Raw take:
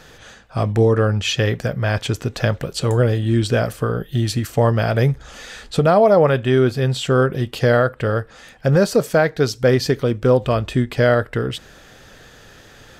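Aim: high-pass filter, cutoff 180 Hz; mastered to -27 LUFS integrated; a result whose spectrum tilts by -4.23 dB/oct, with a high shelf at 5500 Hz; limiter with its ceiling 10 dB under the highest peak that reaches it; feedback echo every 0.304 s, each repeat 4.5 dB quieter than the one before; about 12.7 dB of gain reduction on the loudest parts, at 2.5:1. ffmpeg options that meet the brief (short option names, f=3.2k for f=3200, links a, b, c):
-af "highpass=180,highshelf=f=5.5k:g=7.5,acompressor=threshold=-30dB:ratio=2.5,alimiter=limit=-19dB:level=0:latency=1,aecho=1:1:304|608|912|1216|1520|1824|2128|2432|2736:0.596|0.357|0.214|0.129|0.0772|0.0463|0.0278|0.0167|0.01,volume=2.5dB"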